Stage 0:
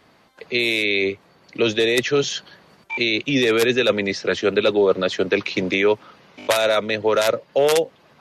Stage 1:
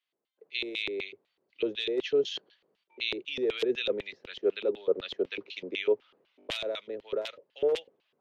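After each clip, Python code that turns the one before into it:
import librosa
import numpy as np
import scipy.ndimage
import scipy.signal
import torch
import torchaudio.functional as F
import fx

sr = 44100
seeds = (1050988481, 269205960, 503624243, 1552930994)

y = fx.filter_lfo_bandpass(x, sr, shape='square', hz=4.0, low_hz=410.0, high_hz=3100.0, q=2.9)
y = fx.band_widen(y, sr, depth_pct=40)
y = y * librosa.db_to_amplitude(-6.5)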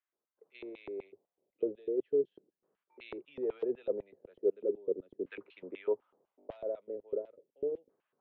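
y = fx.filter_lfo_lowpass(x, sr, shape='saw_down', hz=0.38, low_hz=290.0, high_hz=1600.0, q=1.7)
y = y * librosa.db_to_amplitude(-7.0)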